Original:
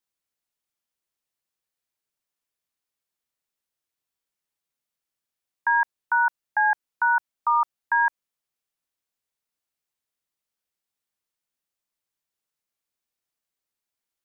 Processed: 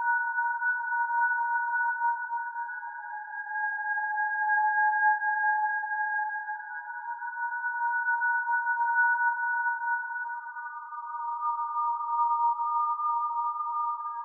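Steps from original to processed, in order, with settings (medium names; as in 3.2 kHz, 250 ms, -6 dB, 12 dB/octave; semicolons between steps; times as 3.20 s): Paulstretch 8.6×, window 0.50 s, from 6.08 s; loudest bins only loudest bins 16; on a send: thinning echo 506 ms, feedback 48%, high-pass 540 Hz, level -15 dB; on the sum: trim -5.5 dB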